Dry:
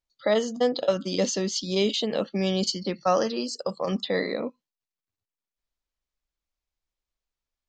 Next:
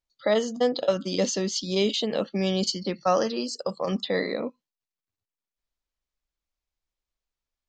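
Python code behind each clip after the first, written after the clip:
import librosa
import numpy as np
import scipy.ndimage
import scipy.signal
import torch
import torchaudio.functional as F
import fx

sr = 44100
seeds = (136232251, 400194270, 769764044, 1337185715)

y = x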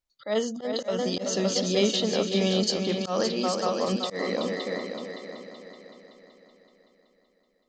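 y = fx.echo_heads(x, sr, ms=189, heads='second and third', feedback_pct=48, wet_db=-7.0)
y = fx.auto_swell(y, sr, attack_ms=162.0)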